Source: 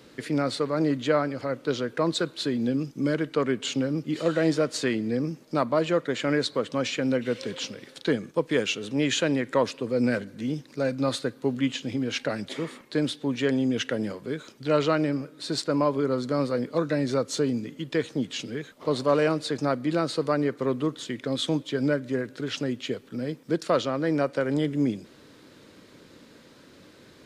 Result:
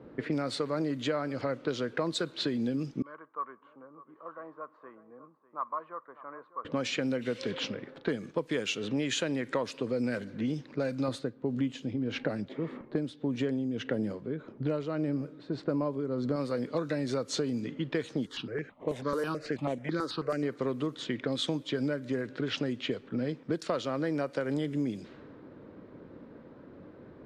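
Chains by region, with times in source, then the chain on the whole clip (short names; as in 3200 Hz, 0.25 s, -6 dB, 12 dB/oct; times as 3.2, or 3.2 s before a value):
3.02–6.65 band-pass 1100 Hz, Q 10 + echo 0.6 s -16 dB
11.08–16.36 tilt shelf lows +5.5 dB, about 780 Hz + tremolo 1.7 Hz, depth 66%
18.26–20.43 CVSD 64 kbps + low shelf 220 Hz -4.5 dB + step phaser 9.2 Hz 680–4800 Hz
whole clip: low-pass opened by the level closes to 880 Hz, open at -22 dBFS; compressor, threshold -31 dBFS; gain +3 dB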